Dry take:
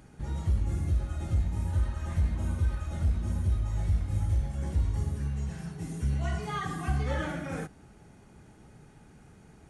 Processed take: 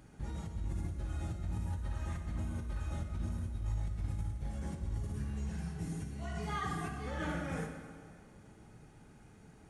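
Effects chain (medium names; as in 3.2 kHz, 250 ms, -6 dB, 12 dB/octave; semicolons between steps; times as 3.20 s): compressor with a negative ratio -31 dBFS, ratio -1; plate-style reverb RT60 1.9 s, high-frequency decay 0.85×, DRR 4 dB; trim -7 dB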